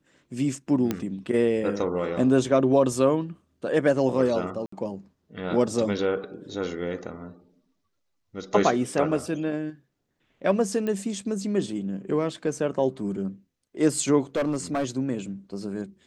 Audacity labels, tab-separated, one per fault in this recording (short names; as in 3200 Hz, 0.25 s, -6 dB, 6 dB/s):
0.910000	0.910000	pop -12 dBFS
4.660000	4.720000	gap 64 ms
10.870000	10.870000	pop -18 dBFS
14.360000	14.850000	clipped -21 dBFS